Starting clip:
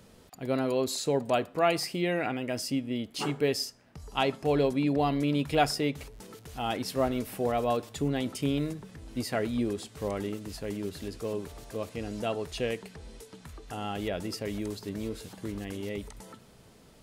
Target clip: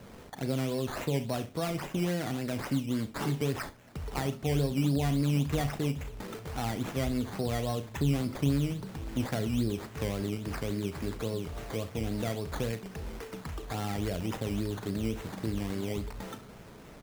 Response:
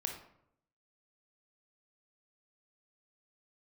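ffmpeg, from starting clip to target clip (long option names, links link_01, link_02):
-filter_complex "[0:a]acrossover=split=190[link_01][link_02];[link_02]acompressor=threshold=-42dB:ratio=4[link_03];[link_01][link_03]amix=inputs=2:normalize=0,acrusher=samples=13:mix=1:aa=0.000001:lfo=1:lforange=7.8:lforate=3.6,aecho=1:1:36|68:0.237|0.15,volume=6.5dB"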